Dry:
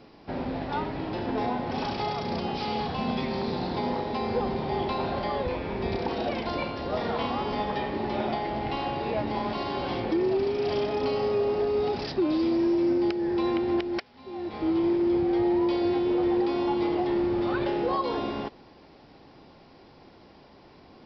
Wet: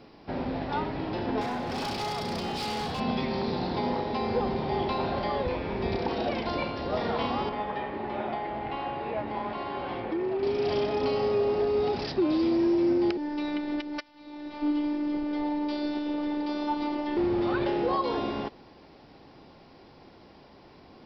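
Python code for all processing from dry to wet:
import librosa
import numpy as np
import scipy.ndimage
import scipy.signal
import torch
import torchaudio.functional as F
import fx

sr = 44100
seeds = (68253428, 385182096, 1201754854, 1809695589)

y = fx.chain(x, sr, fx.high_shelf(hz=4800.0, db=10.0),
    fx.clip_hard(threshold_db=-28.5), at=(1.41, 3.0))
y = fx.chain(y, sr, fx.lowpass(hz=2300.0, slope=12),
    fx.low_shelf(hz=470.0, db=-7.5), at=(7.49, 10.43))
y = fx.chain(y, sr, fx.comb(ms=7.1, depth=0.44),
    fx.robotise(hz=295.0), at=(13.17, 17.17))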